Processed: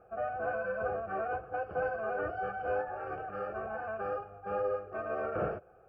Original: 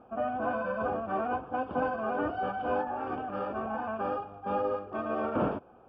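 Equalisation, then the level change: band-stop 580 Hz, Q 12; static phaser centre 960 Hz, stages 6; 0.0 dB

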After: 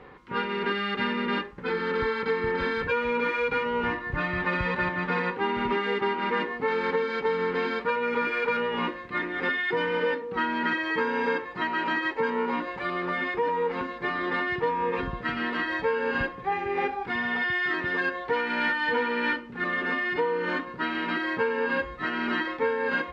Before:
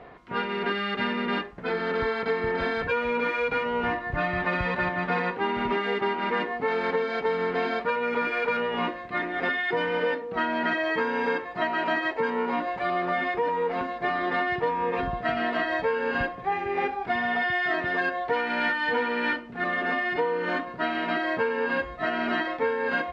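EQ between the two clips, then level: Butterworth band-stop 670 Hz, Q 4; 0.0 dB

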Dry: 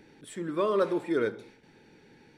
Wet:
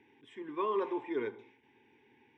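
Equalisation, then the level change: dynamic bell 760 Hz, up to +5 dB, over -41 dBFS, Q 1; cabinet simulation 150–4300 Hz, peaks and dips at 320 Hz -9 dB, 480 Hz -10 dB, 740 Hz -8 dB, 1.7 kHz -7 dB, 2.4 kHz -3 dB; static phaser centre 890 Hz, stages 8; 0.0 dB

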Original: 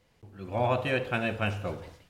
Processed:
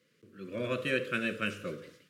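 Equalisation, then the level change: high-pass 150 Hz 24 dB/octave; Chebyshev band-stop 500–1300 Hz, order 2; dynamic bell 9 kHz, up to +5 dB, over -54 dBFS, Q 0.74; -1.0 dB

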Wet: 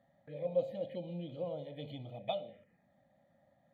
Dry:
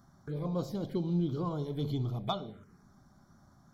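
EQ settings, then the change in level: vowel filter e; static phaser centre 1.5 kHz, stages 6; +15.0 dB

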